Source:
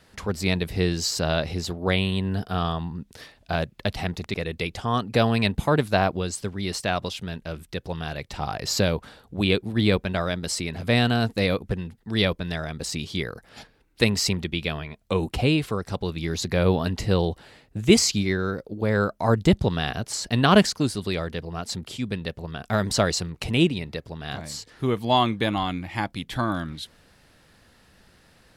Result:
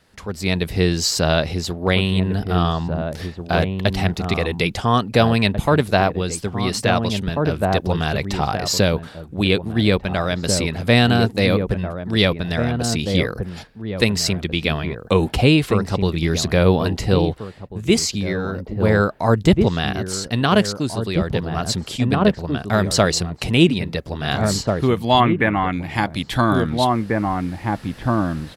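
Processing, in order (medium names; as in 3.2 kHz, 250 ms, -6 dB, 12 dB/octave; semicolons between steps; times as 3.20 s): 25.20–25.73 s: resonant high shelf 2.8 kHz -12 dB, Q 3; echo from a far wall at 290 m, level -6 dB; level rider gain up to 16 dB; trim -2 dB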